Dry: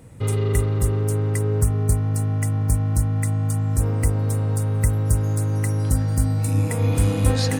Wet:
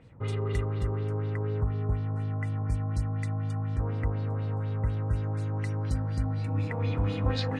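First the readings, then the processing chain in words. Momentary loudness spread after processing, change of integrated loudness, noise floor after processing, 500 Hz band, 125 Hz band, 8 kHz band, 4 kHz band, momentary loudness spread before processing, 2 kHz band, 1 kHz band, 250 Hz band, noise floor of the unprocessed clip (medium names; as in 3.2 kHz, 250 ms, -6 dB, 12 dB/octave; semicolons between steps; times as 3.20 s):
3 LU, -9.0 dB, -32 dBFS, -8.0 dB, -9.0 dB, under -25 dB, no reading, 2 LU, -6.5 dB, -5.5 dB, -9.0 dB, -23 dBFS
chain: LFO low-pass sine 4.1 Hz 910–4400 Hz; trim -9 dB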